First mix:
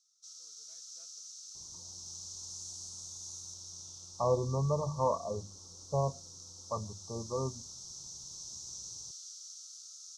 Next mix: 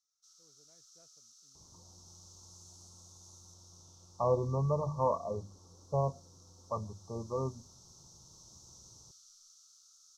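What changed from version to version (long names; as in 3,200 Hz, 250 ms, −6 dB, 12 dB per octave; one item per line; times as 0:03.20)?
background: remove meter weighting curve ITU-R 468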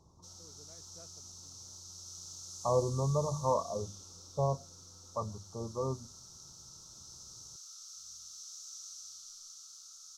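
speech: entry −1.55 s
background +9.5 dB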